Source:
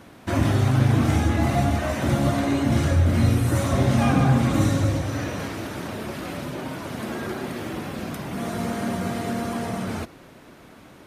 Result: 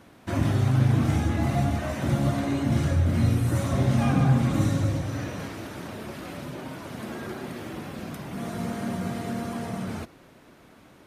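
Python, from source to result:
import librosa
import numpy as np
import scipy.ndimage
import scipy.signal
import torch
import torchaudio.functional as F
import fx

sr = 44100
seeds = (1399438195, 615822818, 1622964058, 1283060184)

y = fx.dynamic_eq(x, sr, hz=150.0, q=1.3, threshold_db=-34.0, ratio=4.0, max_db=5)
y = y * 10.0 ** (-5.5 / 20.0)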